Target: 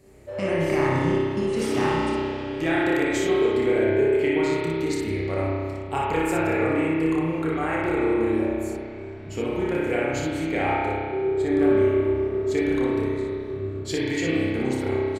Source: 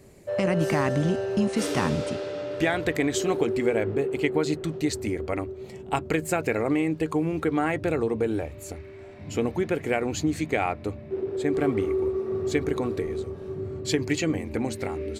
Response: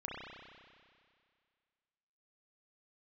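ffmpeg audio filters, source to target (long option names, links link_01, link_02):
-filter_complex "[0:a]aecho=1:1:29|59:0.422|0.631[link_01];[1:a]atrim=start_sample=2205[link_02];[link_01][link_02]afir=irnorm=-1:irlink=0"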